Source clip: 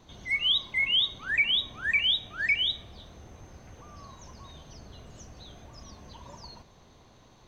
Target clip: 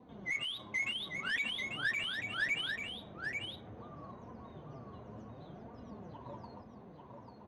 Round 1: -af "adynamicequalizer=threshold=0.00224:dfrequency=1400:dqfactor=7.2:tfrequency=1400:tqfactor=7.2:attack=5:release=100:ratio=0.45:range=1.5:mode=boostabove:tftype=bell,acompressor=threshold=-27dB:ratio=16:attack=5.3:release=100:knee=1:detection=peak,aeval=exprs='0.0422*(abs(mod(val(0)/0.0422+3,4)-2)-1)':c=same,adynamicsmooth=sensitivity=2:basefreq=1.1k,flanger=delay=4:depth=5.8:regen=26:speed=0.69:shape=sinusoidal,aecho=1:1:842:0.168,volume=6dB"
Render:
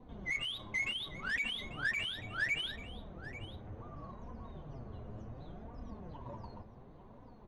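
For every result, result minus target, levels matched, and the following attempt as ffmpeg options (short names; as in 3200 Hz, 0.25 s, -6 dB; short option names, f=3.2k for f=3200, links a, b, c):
125 Hz band +6.5 dB; echo-to-direct -10 dB
-af "adynamicequalizer=threshold=0.00224:dfrequency=1400:dqfactor=7.2:tfrequency=1400:tqfactor=7.2:attack=5:release=100:ratio=0.45:range=1.5:mode=boostabove:tftype=bell,acompressor=threshold=-27dB:ratio=16:attack=5.3:release=100:knee=1:detection=peak,highpass=130,aeval=exprs='0.0422*(abs(mod(val(0)/0.0422+3,4)-2)-1)':c=same,adynamicsmooth=sensitivity=2:basefreq=1.1k,flanger=delay=4:depth=5.8:regen=26:speed=0.69:shape=sinusoidal,aecho=1:1:842:0.168,volume=6dB"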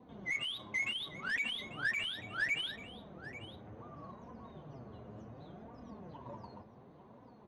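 echo-to-direct -10 dB
-af "adynamicequalizer=threshold=0.00224:dfrequency=1400:dqfactor=7.2:tfrequency=1400:tqfactor=7.2:attack=5:release=100:ratio=0.45:range=1.5:mode=boostabove:tftype=bell,acompressor=threshold=-27dB:ratio=16:attack=5.3:release=100:knee=1:detection=peak,highpass=130,aeval=exprs='0.0422*(abs(mod(val(0)/0.0422+3,4)-2)-1)':c=same,adynamicsmooth=sensitivity=2:basefreq=1.1k,flanger=delay=4:depth=5.8:regen=26:speed=0.69:shape=sinusoidal,aecho=1:1:842:0.531,volume=6dB"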